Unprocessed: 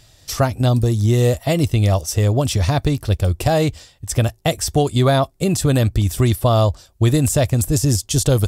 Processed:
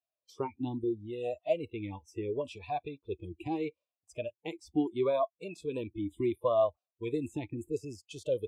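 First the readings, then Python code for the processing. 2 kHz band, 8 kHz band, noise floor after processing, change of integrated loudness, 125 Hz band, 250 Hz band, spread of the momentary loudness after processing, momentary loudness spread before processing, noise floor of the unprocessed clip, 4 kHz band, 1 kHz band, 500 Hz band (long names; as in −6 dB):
−19.5 dB, below −30 dB, below −85 dBFS, −17.0 dB, −29.5 dB, −15.0 dB, 12 LU, 5 LU, −52 dBFS, −24.5 dB, −14.0 dB, −11.5 dB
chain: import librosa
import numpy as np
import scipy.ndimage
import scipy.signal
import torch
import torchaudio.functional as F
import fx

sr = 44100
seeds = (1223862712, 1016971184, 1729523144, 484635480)

y = fx.noise_reduce_blind(x, sr, reduce_db=29)
y = fx.vowel_sweep(y, sr, vowels='a-u', hz=0.74)
y = y * librosa.db_to_amplitude(-2.5)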